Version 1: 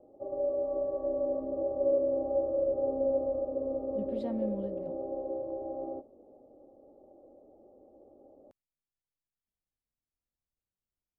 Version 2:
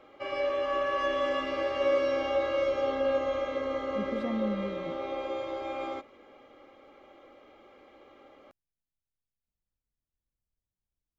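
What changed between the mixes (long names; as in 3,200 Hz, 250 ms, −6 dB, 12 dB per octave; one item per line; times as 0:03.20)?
speech: add low-shelf EQ 150 Hz +9 dB
background: remove elliptic low-pass filter 710 Hz, stop band 70 dB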